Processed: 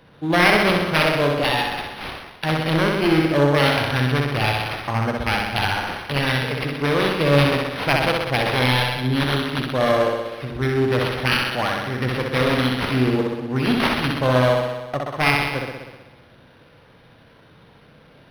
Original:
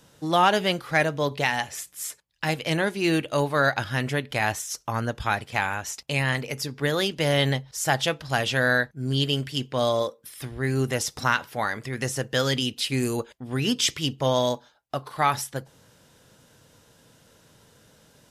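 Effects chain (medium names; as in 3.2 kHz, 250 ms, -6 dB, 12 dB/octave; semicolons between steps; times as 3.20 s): self-modulated delay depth 0.34 ms; flutter echo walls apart 10.8 m, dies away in 1.2 s; decimation joined by straight lines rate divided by 6×; trim +4.5 dB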